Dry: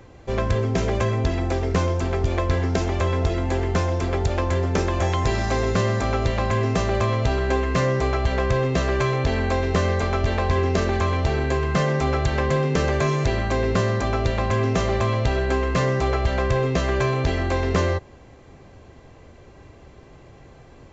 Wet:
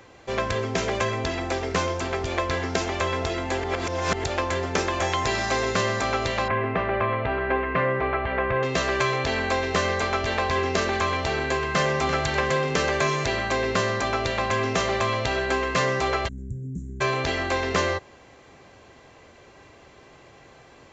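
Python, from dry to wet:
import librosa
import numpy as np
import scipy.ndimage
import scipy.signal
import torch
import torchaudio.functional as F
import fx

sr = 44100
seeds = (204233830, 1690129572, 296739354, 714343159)

y = fx.lowpass(x, sr, hz=2400.0, slope=24, at=(6.48, 8.63))
y = fx.echo_throw(y, sr, start_s=11.44, length_s=0.63, ms=340, feedback_pct=45, wet_db=-10.5)
y = fx.cheby2_bandstop(y, sr, low_hz=580.0, high_hz=4900.0, order=4, stop_db=50, at=(16.27, 17.0), fade=0.02)
y = fx.edit(y, sr, fx.reverse_span(start_s=3.64, length_s=0.6), tone=tone)
y = fx.lowpass(y, sr, hz=2700.0, slope=6)
y = fx.tilt_eq(y, sr, slope=3.5)
y = y * librosa.db_to_amplitude(2.0)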